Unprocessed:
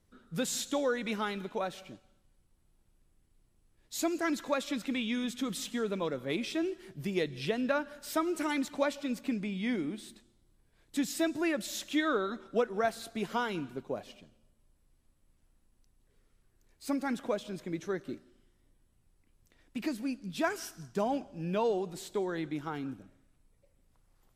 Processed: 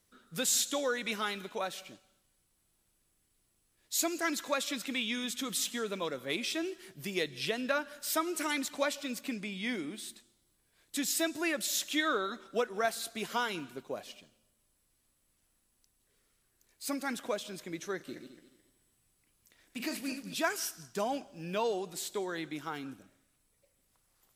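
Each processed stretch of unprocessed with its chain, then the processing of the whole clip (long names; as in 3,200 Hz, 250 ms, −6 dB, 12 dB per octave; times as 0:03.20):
0:17.96–0:20.35: feedback delay that plays each chunk backwards 108 ms, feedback 51%, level −7 dB + double-tracking delay 40 ms −13 dB
whole clip: spectral tilt +2.5 dB per octave; notch filter 860 Hz, Q 24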